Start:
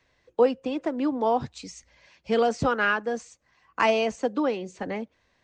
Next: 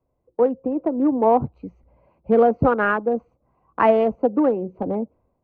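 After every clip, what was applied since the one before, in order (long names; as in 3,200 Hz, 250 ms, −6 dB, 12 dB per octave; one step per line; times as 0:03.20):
adaptive Wiener filter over 25 samples
low-pass filter 1,200 Hz 12 dB per octave
automatic gain control gain up to 11.5 dB
level −2 dB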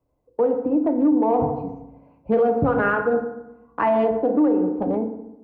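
feedback delay network reverb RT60 0.9 s, low-frequency decay 1.25×, high-frequency decay 0.55×, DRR 4.5 dB
brickwall limiter −11.5 dBFS, peak gain reduction 9.5 dB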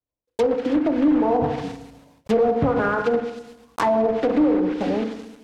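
one scale factor per block 3 bits
treble cut that deepens with the level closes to 1,100 Hz, closed at −15 dBFS
noise gate with hold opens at −47 dBFS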